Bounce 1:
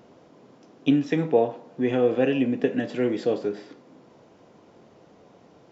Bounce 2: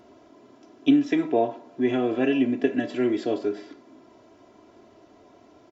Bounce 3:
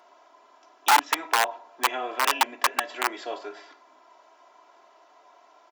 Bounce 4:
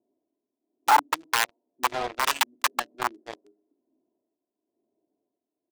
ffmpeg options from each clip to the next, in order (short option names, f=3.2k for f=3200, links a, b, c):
-af "aecho=1:1:3:0.75,volume=-1.5dB"
-af "aeval=exprs='(mod(5.31*val(0)+1,2)-1)/5.31':c=same,highpass=f=920:t=q:w=1.9"
-filter_complex "[0:a]acrossover=split=1400[a][b];[a]aeval=exprs='val(0)*(1-0.7/2+0.7/2*cos(2*PI*1*n/s))':c=same[c];[b]aeval=exprs='val(0)*(1-0.7/2-0.7/2*cos(2*PI*1*n/s))':c=same[d];[c][d]amix=inputs=2:normalize=0,acrossover=split=300[e][f];[f]acrusher=bits=4:mix=0:aa=0.5[g];[e][g]amix=inputs=2:normalize=0,volume=2dB"